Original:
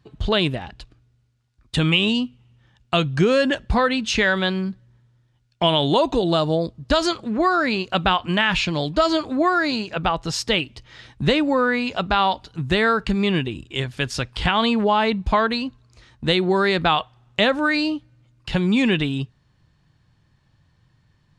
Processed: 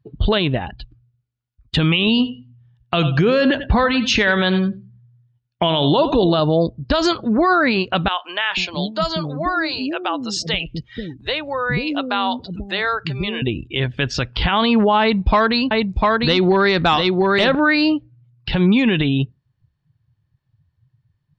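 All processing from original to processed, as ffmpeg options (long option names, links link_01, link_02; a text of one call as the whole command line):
ffmpeg -i in.wav -filter_complex "[0:a]asettb=1/sr,asplit=3[link_01][link_02][link_03];[link_01]atrim=end=2.074[link_04];[link_02]atrim=start=2.07:end=6.4,asetpts=PTS-STARTPTS,afade=type=in:duration=0.004:curve=qsin,afade=type=out:start_time=4.326:duration=0.004:curve=qsin,highpass=41,aecho=1:1:92|184|276:0.178|0.0498|0.0139,atrim=end_sample=190953[link_05];[link_03]atrim=start=6.396[link_06];[link_04][link_05]acrossfade=duration=0.004:curve1=hsin:curve2=qsin[link_07];[link_07][link_06]acrossfade=duration=0.004:curve1=qsin:curve2=hsin,asettb=1/sr,asplit=3[link_08][link_09][link_10];[link_08]atrim=end=8.084[link_11];[link_09]atrim=start=8.08:end=13.42,asetpts=PTS-STARTPTS,afade=type=in:duration=0.004:curve=qsin,afade=type=out:start_time=5.336:duration=0.004:curve=qsin,aemphasis=mode=production:type=50fm,acompressor=threshold=-37dB:ratio=1.5:attack=3.2:release=140:knee=1:detection=peak,acrossover=split=400[link_12][link_13];[link_12]adelay=490[link_14];[link_14][link_13]amix=inputs=2:normalize=0,atrim=end_sample=235494[link_15];[link_10]atrim=start=13.416[link_16];[link_11][link_15]acrossfade=duration=0.004:curve1=hsin:curve2=qsin[link_17];[link_17][link_16]acrossfade=duration=0.004:curve1=qsin:curve2=hsin,asettb=1/sr,asplit=3[link_18][link_19][link_20];[link_18]atrim=end=15.014[link_21];[link_19]atrim=start=15.01:end=17.55,asetpts=PTS-STARTPTS,afade=type=in:duration=0.004:curve=qsin,afade=type=out:start_time=2.536:duration=0.004:curve=qsin,highshelf=frequency=7300:gain=10.5,volume=11.5dB,asoftclip=hard,volume=-11.5dB,aecho=1:1:699:0.596,atrim=end_sample=112014[link_22];[link_20]atrim=start=17.546[link_23];[link_21][link_22]acrossfade=duration=0.004:curve1=hsin:curve2=qsin[link_24];[link_24][link_23]acrossfade=duration=0.004:curve1=qsin:curve2=hsin,lowpass=5400,afftdn=noise_reduction=22:noise_floor=-42,alimiter=level_in=13.5dB:limit=-1dB:release=50:level=0:latency=1,volume=-6.5dB" out.wav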